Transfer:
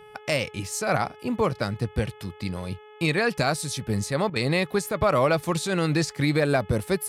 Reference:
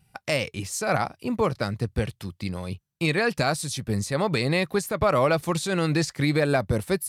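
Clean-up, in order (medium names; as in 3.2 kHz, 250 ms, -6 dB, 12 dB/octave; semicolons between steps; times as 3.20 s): de-hum 424.7 Hz, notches 8; interpolate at 4.30 s, 56 ms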